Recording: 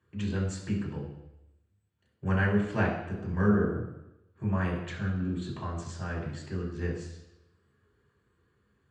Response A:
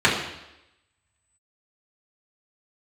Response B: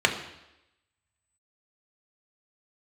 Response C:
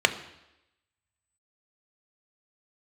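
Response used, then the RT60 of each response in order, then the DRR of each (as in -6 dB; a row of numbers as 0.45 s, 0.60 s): A; 0.90 s, 0.90 s, 0.90 s; -7.0 dB, 2.5 dB, 7.5 dB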